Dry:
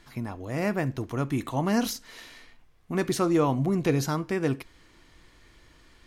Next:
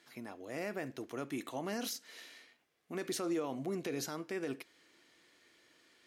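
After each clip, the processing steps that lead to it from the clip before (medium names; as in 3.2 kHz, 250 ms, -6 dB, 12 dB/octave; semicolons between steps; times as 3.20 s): high-pass 330 Hz 12 dB/octave; peaking EQ 1 kHz -7 dB 0.76 oct; peak limiter -22.5 dBFS, peak gain reduction 8.5 dB; trim -5.5 dB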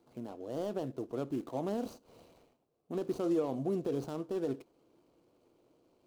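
median filter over 25 samples; graphic EQ 125/500/2000 Hz +4/+4/-9 dB; trim +2.5 dB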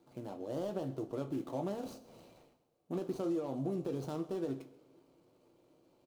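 compression, threshold -34 dBFS, peak gain reduction 7.5 dB; delay 133 ms -21 dB; reverberation, pre-delay 3 ms, DRR 5 dB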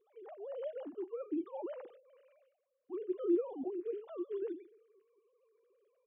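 formants replaced by sine waves; trim -1 dB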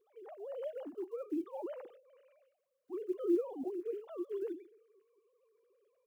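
block-companded coder 7-bit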